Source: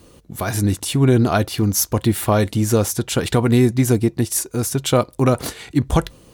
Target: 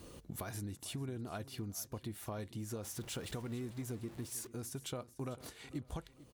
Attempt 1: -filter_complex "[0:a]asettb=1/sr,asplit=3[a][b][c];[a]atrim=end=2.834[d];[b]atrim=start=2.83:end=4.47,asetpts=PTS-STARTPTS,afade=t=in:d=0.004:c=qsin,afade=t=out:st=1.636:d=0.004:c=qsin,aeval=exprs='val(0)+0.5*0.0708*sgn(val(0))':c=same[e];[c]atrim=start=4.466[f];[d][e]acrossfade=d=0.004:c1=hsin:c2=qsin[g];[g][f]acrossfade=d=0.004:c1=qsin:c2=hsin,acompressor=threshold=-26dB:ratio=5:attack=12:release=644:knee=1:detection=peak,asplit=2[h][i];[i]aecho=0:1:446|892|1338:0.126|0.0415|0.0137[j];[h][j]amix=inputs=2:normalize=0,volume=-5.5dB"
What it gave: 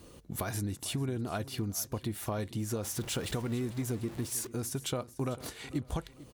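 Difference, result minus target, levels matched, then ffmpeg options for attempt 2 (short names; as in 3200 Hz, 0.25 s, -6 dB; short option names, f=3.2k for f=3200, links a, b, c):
compressor: peak gain reduction -8 dB
-filter_complex "[0:a]asettb=1/sr,asplit=3[a][b][c];[a]atrim=end=2.834[d];[b]atrim=start=2.83:end=4.47,asetpts=PTS-STARTPTS,afade=t=in:d=0.004:c=qsin,afade=t=out:st=1.636:d=0.004:c=qsin,aeval=exprs='val(0)+0.5*0.0708*sgn(val(0))':c=same[e];[c]atrim=start=4.466[f];[d][e]acrossfade=d=0.004:c1=hsin:c2=qsin[g];[g][f]acrossfade=d=0.004:c1=qsin:c2=hsin,acompressor=threshold=-36dB:ratio=5:attack=12:release=644:knee=1:detection=peak,asplit=2[h][i];[i]aecho=0:1:446|892|1338:0.126|0.0415|0.0137[j];[h][j]amix=inputs=2:normalize=0,volume=-5.5dB"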